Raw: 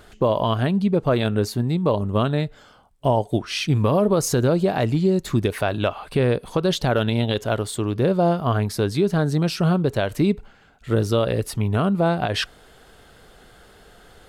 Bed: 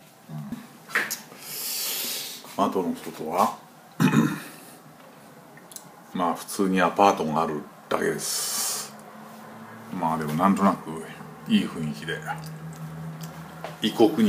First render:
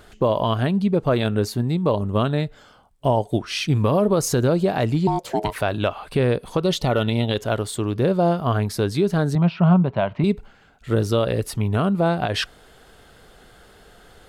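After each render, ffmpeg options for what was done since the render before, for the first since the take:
ffmpeg -i in.wav -filter_complex "[0:a]asettb=1/sr,asplit=3[link_01][link_02][link_03];[link_01]atrim=end=5.074[link_04];[link_02]atrim=start=5.07:end=5.56,asetpts=PTS-STARTPTS,afade=type=in:duration=0.004:curve=qsin,afade=type=out:start_time=0.486:duration=0.004:curve=qsin,aeval=exprs='val(0)*sin(2*PI*530*n/s)':channel_layout=same[link_05];[link_03]atrim=start=5.556[link_06];[link_04][link_05]acrossfade=duration=0.004:curve1=hsin:curve2=qsin[link_07];[link_07][link_06]acrossfade=duration=0.004:curve1=qsin:curve2=hsin,asettb=1/sr,asplit=3[link_08][link_09][link_10];[link_08]atrim=end=6.644[link_11];[link_09]atrim=start=6.64:end=7.28,asetpts=PTS-STARTPTS,afade=type=in:duration=0.004:curve=qsin,afade=type=out:start_time=0.636:duration=0.004:curve=qsin,asuperstop=centerf=1600:order=20:qfactor=7.4[link_12];[link_10]atrim=start=7.276[link_13];[link_11][link_12]acrossfade=duration=0.004:curve1=hsin:curve2=qsin[link_14];[link_14][link_13]acrossfade=duration=0.004:curve1=qsin:curve2=hsin,asettb=1/sr,asplit=3[link_15][link_16][link_17];[link_15]atrim=end=9.354[link_18];[link_16]atrim=start=9.35:end=10.24,asetpts=PTS-STARTPTS,afade=type=in:duration=0.004:curve=qsin,afade=type=out:start_time=0.886:duration=0.004:curve=qsin,highpass=100,equalizer=frequency=180:width_type=q:width=4:gain=7,equalizer=frequency=310:width_type=q:width=4:gain=-8,equalizer=frequency=460:width_type=q:width=4:gain=-9,equalizer=frequency=660:width_type=q:width=4:gain=5,equalizer=frequency=970:width_type=q:width=4:gain=7,equalizer=frequency=1700:width_type=q:width=4:gain=-5,lowpass=frequency=2900:width=0.5412,lowpass=frequency=2900:width=1.3066[link_19];[link_17]atrim=start=10.236[link_20];[link_18][link_19]acrossfade=duration=0.004:curve1=hsin:curve2=qsin[link_21];[link_21][link_20]acrossfade=duration=0.004:curve1=qsin:curve2=hsin" out.wav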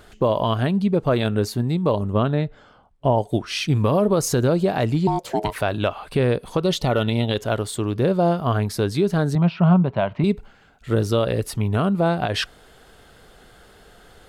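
ffmpeg -i in.wav -filter_complex "[0:a]asettb=1/sr,asplit=3[link_01][link_02][link_03];[link_01]atrim=end=2.134[link_04];[link_02]atrim=start=2.13:end=3.18,asetpts=PTS-STARTPTS,afade=type=in:duration=0.004:curve=qsin,afade=type=out:start_time=1.046:duration=0.004:curve=qsin,aemphasis=mode=reproduction:type=75fm[link_05];[link_03]atrim=start=3.176[link_06];[link_04][link_05]acrossfade=duration=0.004:curve1=hsin:curve2=qsin[link_07];[link_07][link_06]acrossfade=duration=0.004:curve1=qsin:curve2=hsin" out.wav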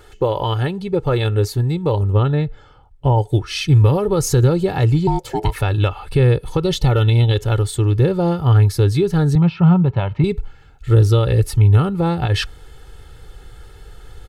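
ffmpeg -i in.wav -af "aecho=1:1:2.3:0.75,asubboost=boost=3.5:cutoff=220" out.wav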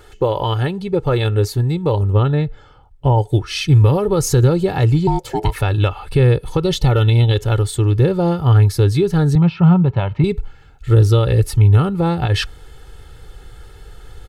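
ffmpeg -i in.wav -af "volume=1dB,alimiter=limit=-3dB:level=0:latency=1" out.wav

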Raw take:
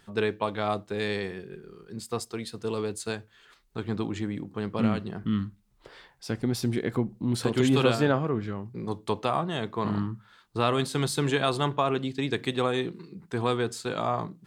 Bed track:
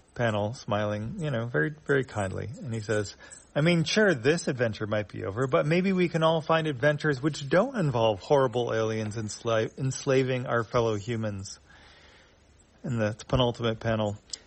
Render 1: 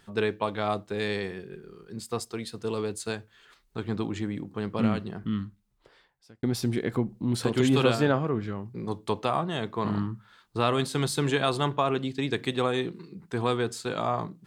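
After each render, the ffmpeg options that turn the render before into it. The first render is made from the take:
ffmpeg -i in.wav -filter_complex "[0:a]asplit=2[link_01][link_02];[link_01]atrim=end=6.43,asetpts=PTS-STARTPTS,afade=type=out:start_time=4.97:duration=1.46[link_03];[link_02]atrim=start=6.43,asetpts=PTS-STARTPTS,afade=type=in:duration=0.004:curve=hsin[link_04];[link_03][link_04]concat=n=2:v=0:a=1" out.wav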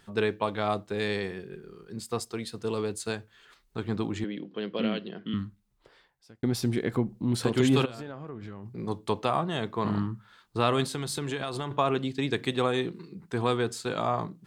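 ffmpeg -i in.wav -filter_complex "[0:a]asettb=1/sr,asplit=3[link_01][link_02][link_03];[link_01]atrim=end=4.244[link_04];[link_02]atrim=start=4.24:end=5.34,asetpts=PTS-STARTPTS,afade=type=in:duration=0.004:curve=qsin,afade=type=out:start_time=1.096:duration=0.004:curve=qsin,highpass=frequency=190:width=0.5412,highpass=frequency=190:width=1.3066,equalizer=frequency=240:width_type=q:width=4:gain=-4,equalizer=frequency=510:width_type=q:width=4:gain=3,equalizer=frequency=850:width_type=q:width=4:gain=-9,equalizer=frequency=1200:width_type=q:width=4:gain=-7,equalizer=frequency=3100:width_type=q:width=4:gain=9,lowpass=frequency=4700:width=0.5412,lowpass=frequency=4700:width=1.3066[link_05];[link_03]atrim=start=5.336[link_06];[link_04][link_05]acrossfade=duration=0.004:curve1=hsin:curve2=qsin[link_07];[link_07][link_06]acrossfade=duration=0.004:curve1=qsin:curve2=hsin,asplit=3[link_08][link_09][link_10];[link_08]afade=type=out:start_time=7.84:duration=0.02[link_11];[link_09]acompressor=threshold=-35dB:ratio=12:attack=3.2:release=140:knee=1:detection=peak,afade=type=in:start_time=7.84:duration=0.02,afade=type=out:start_time=8.77:duration=0.02[link_12];[link_10]afade=type=in:start_time=8.77:duration=0.02[link_13];[link_11][link_12][link_13]amix=inputs=3:normalize=0,asettb=1/sr,asplit=3[link_14][link_15][link_16];[link_14]atrim=end=10.884[link_17];[link_15]atrim=start=10.88:end=11.71,asetpts=PTS-STARTPTS,afade=type=in:duration=0.004:curve=qsin,afade=type=out:start_time=0.826:duration=0.004:curve=qsin,acompressor=threshold=-28dB:ratio=6:attack=3.2:release=140:knee=1:detection=peak[link_18];[link_16]atrim=start=11.706[link_19];[link_17][link_18]acrossfade=duration=0.004:curve1=hsin:curve2=qsin[link_20];[link_20][link_19]acrossfade=duration=0.004:curve1=qsin:curve2=hsin" out.wav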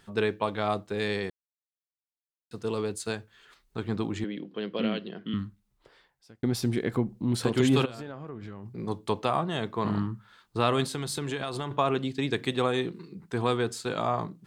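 ffmpeg -i in.wav -filter_complex "[0:a]asplit=3[link_01][link_02][link_03];[link_01]atrim=end=1.3,asetpts=PTS-STARTPTS,afade=type=out:start_time=1.296:duration=0.004:curve=hsin[link_04];[link_02]atrim=start=1.3:end=2.51,asetpts=PTS-STARTPTS,volume=0[link_05];[link_03]atrim=start=2.51,asetpts=PTS-STARTPTS,afade=type=in:duration=0.004:curve=hsin[link_06];[link_04][link_05][link_06]concat=n=3:v=0:a=1" out.wav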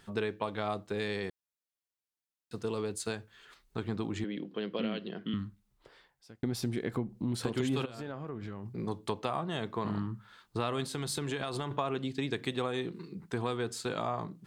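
ffmpeg -i in.wav -af "acompressor=threshold=-32dB:ratio=2.5" out.wav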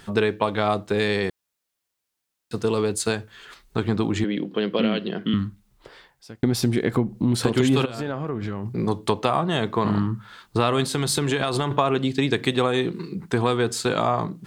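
ffmpeg -i in.wav -af "volume=12dB" out.wav

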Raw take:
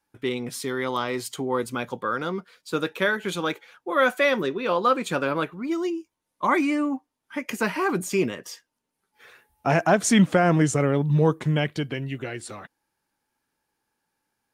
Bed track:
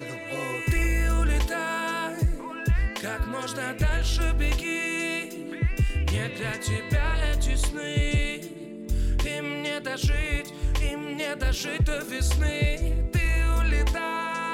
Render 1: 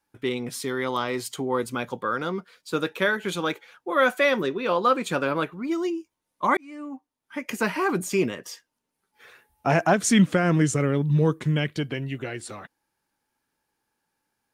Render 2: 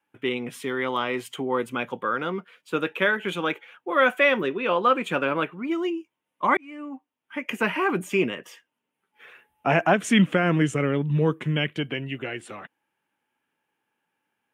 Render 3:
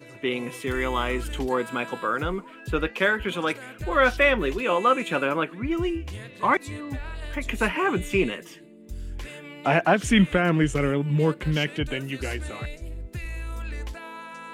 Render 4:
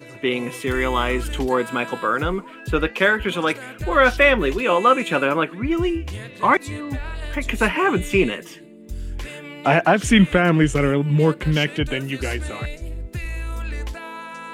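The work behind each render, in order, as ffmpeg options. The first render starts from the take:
ffmpeg -i in.wav -filter_complex "[0:a]asettb=1/sr,asplit=3[link_01][link_02][link_03];[link_01]atrim=end=9.934[link_04];[link_02]atrim=start=9.93:end=11.78,asetpts=PTS-STARTPTS,afade=type=in:duration=0.004:curve=qsin,afade=type=out:start_time=1.846:duration=0.004:curve=qsin,equalizer=frequency=760:width=1.5:gain=-7.5[link_05];[link_03]atrim=start=11.776[link_06];[link_04][link_05]acrossfade=duration=0.004:curve1=hsin:curve2=qsin[link_07];[link_07][link_06]acrossfade=duration=0.004:curve1=qsin:curve2=hsin,asplit=2[link_08][link_09];[link_08]atrim=end=6.57,asetpts=PTS-STARTPTS,afade=type=out:start_time=6.566:duration=0.004:curve=hsin[link_10];[link_09]atrim=start=6.57,asetpts=PTS-STARTPTS,afade=type=in:duration=1.01[link_11];[link_10][link_11]concat=n=2:v=0:a=1" out.wav
ffmpeg -i in.wav -af "highpass=140,highshelf=frequency=3600:width_type=q:width=3:gain=-7" out.wav
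ffmpeg -i in.wav -i bed.wav -filter_complex "[1:a]volume=-10.5dB[link_01];[0:a][link_01]amix=inputs=2:normalize=0" out.wav
ffmpeg -i in.wav -af "volume=5dB,alimiter=limit=-3dB:level=0:latency=1" out.wav

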